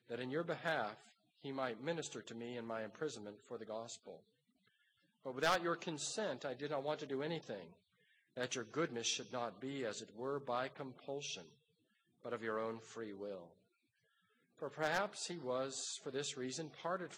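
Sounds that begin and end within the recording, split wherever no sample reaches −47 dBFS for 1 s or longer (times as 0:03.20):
0:05.26–0:13.45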